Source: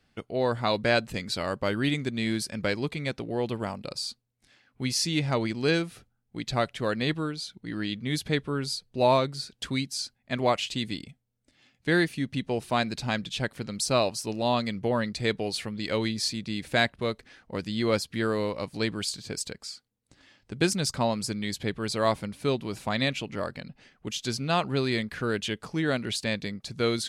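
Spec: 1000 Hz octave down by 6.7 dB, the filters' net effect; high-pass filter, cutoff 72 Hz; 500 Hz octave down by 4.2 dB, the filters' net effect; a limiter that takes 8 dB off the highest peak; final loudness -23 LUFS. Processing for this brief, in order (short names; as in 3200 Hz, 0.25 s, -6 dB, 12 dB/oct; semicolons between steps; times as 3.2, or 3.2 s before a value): HPF 72 Hz; bell 500 Hz -3 dB; bell 1000 Hz -8 dB; gain +9.5 dB; limiter -10.5 dBFS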